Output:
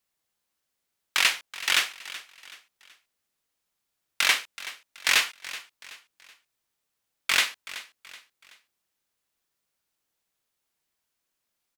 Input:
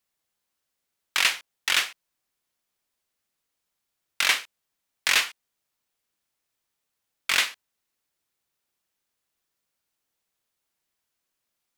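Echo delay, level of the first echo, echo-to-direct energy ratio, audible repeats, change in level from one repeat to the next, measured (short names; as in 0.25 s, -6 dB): 0.377 s, -16.0 dB, -15.5 dB, 3, -8.0 dB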